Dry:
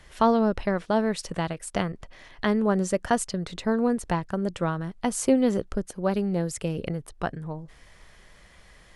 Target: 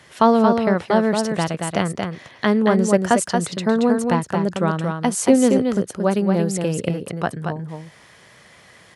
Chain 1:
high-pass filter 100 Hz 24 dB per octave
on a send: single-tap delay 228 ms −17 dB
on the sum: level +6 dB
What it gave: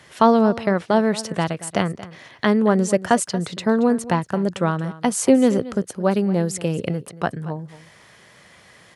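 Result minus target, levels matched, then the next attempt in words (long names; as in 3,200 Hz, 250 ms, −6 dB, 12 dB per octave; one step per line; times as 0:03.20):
echo-to-direct −12 dB
high-pass filter 100 Hz 24 dB per octave
on a send: single-tap delay 228 ms −5 dB
on the sum: level +6 dB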